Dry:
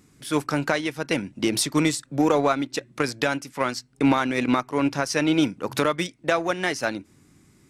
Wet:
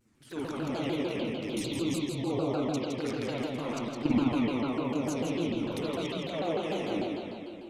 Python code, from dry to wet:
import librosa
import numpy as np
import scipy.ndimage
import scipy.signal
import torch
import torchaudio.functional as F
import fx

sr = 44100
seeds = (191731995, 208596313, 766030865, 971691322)

y = fx.law_mismatch(x, sr, coded='A', at=(1.03, 1.65))
y = fx.level_steps(y, sr, step_db=16)
y = fx.env_flanger(y, sr, rest_ms=9.9, full_db=-32.0)
y = fx.echo_wet_highpass(y, sr, ms=164, feedback_pct=37, hz=4300.0, wet_db=-4.5)
y = fx.rev_spring(y, sr, rt60_s=2.5, pass_ms=(43, 52, 56), chirp_ms=35, drr_db=-8.5)
y = fx.vibrato_shape(y, sr, shape='saw_down', rate_hz=6.7, depth_cents=250.0)
y = y * 10.0 ** (-5.5 / 20.0)